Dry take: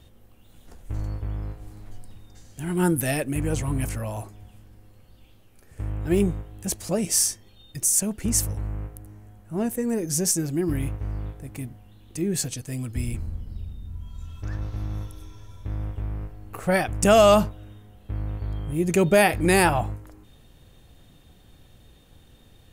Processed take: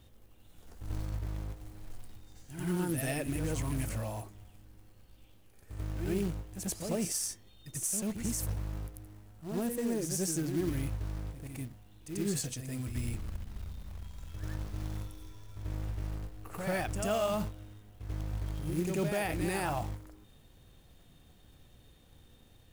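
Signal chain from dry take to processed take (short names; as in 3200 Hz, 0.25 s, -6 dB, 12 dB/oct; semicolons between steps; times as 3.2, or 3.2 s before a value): short-mantissa float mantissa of 2-bit; limiter -17.5 dBFS, peak gain reduction 11.5 dB; reverse echo 90 ms -6.5 dB; gain -7 dB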